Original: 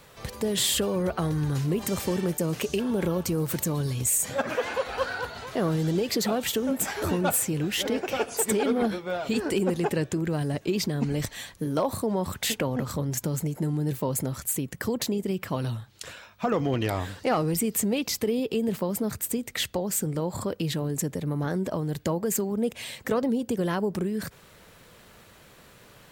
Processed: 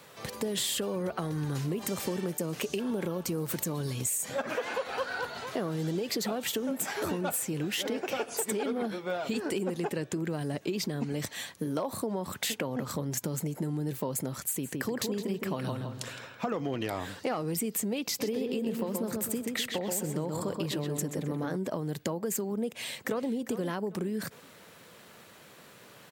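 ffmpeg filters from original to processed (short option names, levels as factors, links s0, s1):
-filter_complex "[0:a]asettb=1/sr,asplit=3[s0][s1][s2];[s0]atrim=end=14.444[s3];[s1]atrim=start=14.44:end=16.57,asetpts=PTS-STARTPTS,afade=t=in:d=0.004:c=qsin,afade=t=out:st=2.126:d=0.004:c=qsin,asplit=2[s4][s5];[s5]adelay=164,lowpass=f=2000:p=1,volume=0.631,asplit=2[s6][s7];[s7]adelay=164,lowpass=f=2000:p=1,volume=0.38,asplit=2[s8][s9];[s9]adelay=164,lowpass=f=2000:p=1,volume=0.38,asplit=2[s10][s11];[s11]adelay=164,lowpass=f=2000:p=1,volume=0.38,asplit=2[s12][s13];[s13]adelay=164,lowpass=f=2000:p=1,volume=0.38[s14];[s4][s6][s8][s10][s12][s14]amix=inputs=6:normalize=0,atrim=end_sample=93933[s15];[s2]atrim=start=16.566[s16];[s3][s15]acrossfade=d=0.004:c1=hsin:c2=qsin[s17];[s17][s16]acrossfade=d=0.004:c1=qsin:c2=hsin,asplit=3[s18][s19][s20];[s18]afade=t=out:st=18.19:d=0.02[s21];[s19]asplit=2[s22][s23];[s23]adelay=128,lowpass=f=2800:p=1,volume=0.631,asplit=2[s24][s25];[s25]adelay=128,lowpass=f=2800:p=1,volume=0.47,asplit=2[s26][s27];[s27]adelay=128,lowpass=f=2800:p=1,volume=0.47,asplit=2[s28][s29];[s29]adelay=128,lowpass=f=2800:p=1,volume=0.47,asplit=2[s30][s31];[s31]adelay=128,lowpass=f=2800:p=1,volume=0.47,asplit=2[s32][s33];[s33]adelay=128,lowpass=f=2800:p=1,volume=0.47[s34];[s22][s24][s26][s28][s30][s32][s34]amix=inputs=7:normalize=0,afade=t=in:st=18.19:d=0.02,afade=t=out:st=21.55:d=0.02[s35];[s20]afade=t=in:st=21.55:d=0.02[s36];[s21][s35][s36]amix=inputs=3:normalize=0,asplit=2[s37][s38];[s38]afade=t=in:st=22.68:d=0.01,afade=t=out:st=23.3:d=0.01,aecho=0:1:400|800|1200:0.211349|0.0634047|0.0190214[s39];[s37][s39]amix=inputs=2:normalize=0,highpass=150,acompressor=threshold=0.0355:ratio=4"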